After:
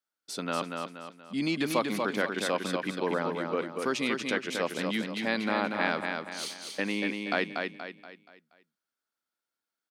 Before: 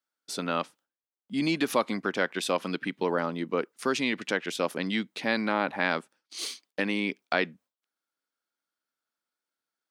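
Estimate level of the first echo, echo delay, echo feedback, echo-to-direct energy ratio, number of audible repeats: -4.5 dB, 0.238 s, 41%, -3.5 dB, 4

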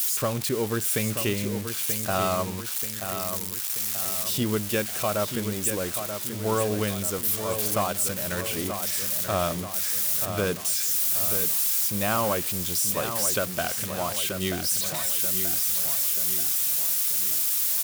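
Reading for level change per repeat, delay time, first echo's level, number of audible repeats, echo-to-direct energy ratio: -6.0 dB, 0.933 s, -8.0 dB, 5, -6.5 dB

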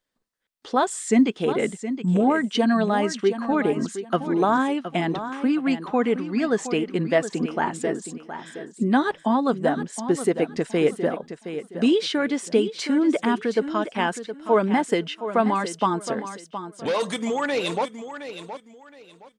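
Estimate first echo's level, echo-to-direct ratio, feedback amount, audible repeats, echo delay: -11.0 dB, -10.5 dB, 25%, 2, 0.718 s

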